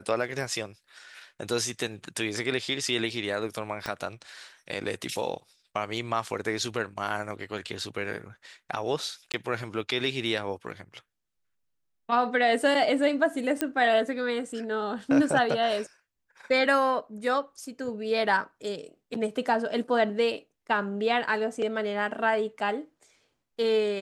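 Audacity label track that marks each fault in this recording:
3.860000	3.860000	click −16 dBFS
9.320000	9.340000	drop-out 18 ms
13.610000	13.610000	click −11 dBFS

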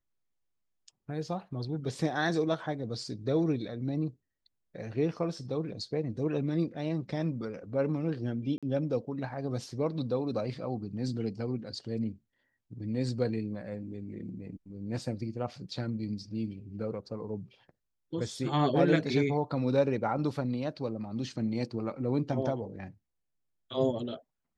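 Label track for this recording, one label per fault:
8.580000	8.630000	drop-out 46 ms

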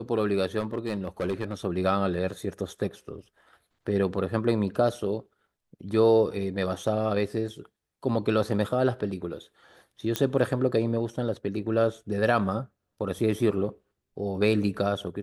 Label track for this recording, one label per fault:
0.590000	1.540000	clipping −23 dBFS
10.160000	10.160000	click −9 dBFS

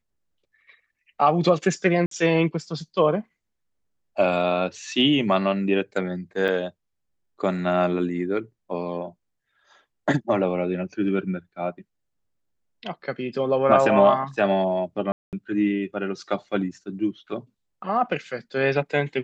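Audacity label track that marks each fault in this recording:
2.060000	2.110000	drop-out 53 ms
6.480000	6.490000	drop-out 6.8 ms
15.120000	15.330000	drop-out 208 ms

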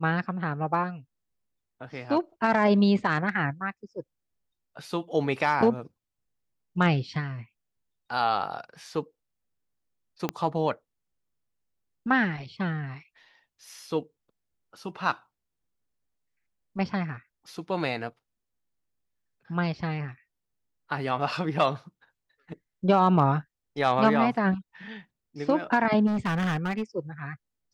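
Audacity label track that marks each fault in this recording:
10.290000	10.290000	click −13 dBFS
26.060000	26.830000	clipping −24 dBFS

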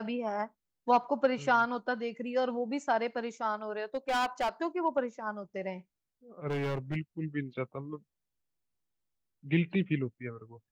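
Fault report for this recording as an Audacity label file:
3.830000	4.490000	clipping −26.5 dBFS
6.470000	6.970000	clipping −29.5 dBFS

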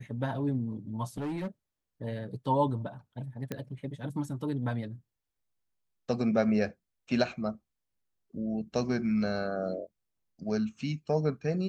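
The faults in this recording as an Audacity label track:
1.170000	1.480000	clipping −31 dBFS
3.520000	3.520000	click −20 dBFS

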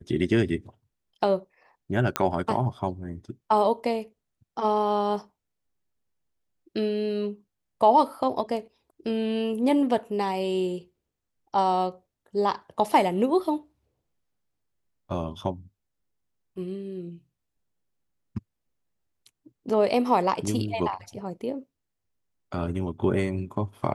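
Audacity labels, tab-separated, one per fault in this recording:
2.160000	2.160000	click −7 dBFS

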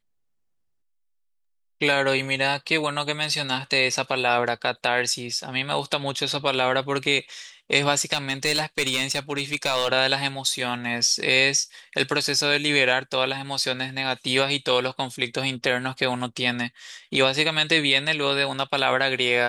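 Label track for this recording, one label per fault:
8.130000	9.880000	clipping −17 dBFS

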